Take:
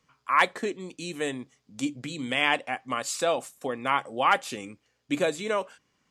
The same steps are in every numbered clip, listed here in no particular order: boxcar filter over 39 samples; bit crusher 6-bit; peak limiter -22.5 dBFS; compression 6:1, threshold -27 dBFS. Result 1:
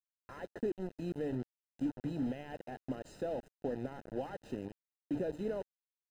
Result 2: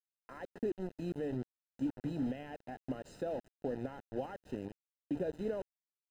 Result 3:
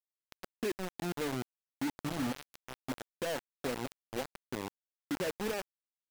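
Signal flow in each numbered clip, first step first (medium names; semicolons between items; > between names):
peak limiter > compression > bit crusher > boxcar filter; compression > bit crusher > peak limiter > boxcar filter; compression > peak limiter > boxcar filter > bit crusher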